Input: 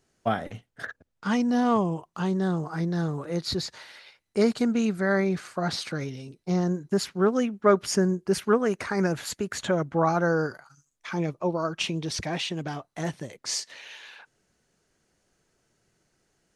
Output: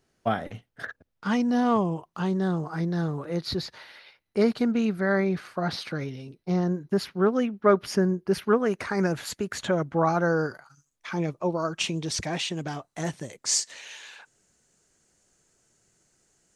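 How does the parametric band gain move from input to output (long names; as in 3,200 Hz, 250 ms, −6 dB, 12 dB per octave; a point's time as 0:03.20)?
parametric band 7,500 Hz 0.65 octaves
0:02.77 −5 dB
0:03.81 −13 dB
0:08.45 −13 dB
0:08.89 −2.5 dB
0:11.08 −2.5 dB
0:11.71 +6 dB
0:13.13 +6 dB
0:13.77 +12.5 dB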